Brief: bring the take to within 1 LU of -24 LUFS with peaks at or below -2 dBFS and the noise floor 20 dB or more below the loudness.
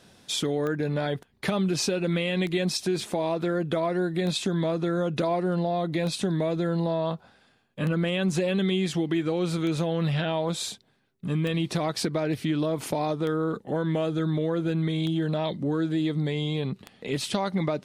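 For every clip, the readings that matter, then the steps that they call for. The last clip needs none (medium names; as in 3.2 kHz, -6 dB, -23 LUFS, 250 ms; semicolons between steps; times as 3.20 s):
clicks found 10; loudness -27.5 LUFS; peak level -12.5 dBFS; loudness target -24.0 LUFS
-> de-click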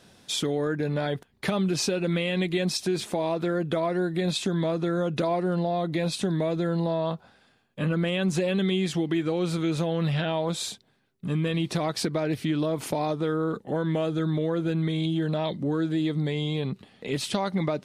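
clicks found 0; loudness -27.5 LUFS; peak level -12.5 dBFS; loudness target -24.0 LUFS
-> trim +3.5 dB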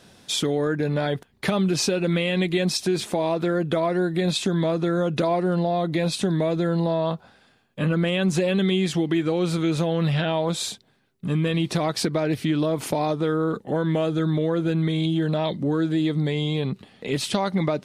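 loudness -24.0 LUFS; peak level -9.0 dBFS; noise floor -59 dBFS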